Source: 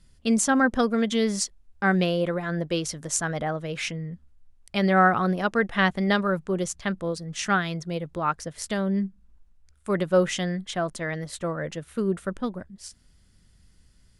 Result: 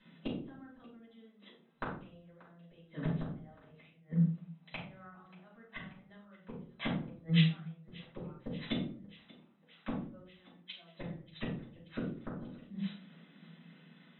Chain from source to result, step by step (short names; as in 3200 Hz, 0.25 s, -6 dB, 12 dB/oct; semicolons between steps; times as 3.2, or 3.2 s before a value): FFT band-pass 140–4000 Hz; in parallel at -2 dB: compressor 10:1, threshold -29 dBFS, peak gain reduction 15 dB; on the sum: flipped gate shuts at -21 dBFS, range -41 dB; thinning echo 0.584 s, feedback 74%, high-pass 350 Hz, level -20 dB; reverb RT60 0.45 s, pre-delay 3 ms, DRR -8.5 dB; 4.81–5.26 three-band squash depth 40%; gain -9 dB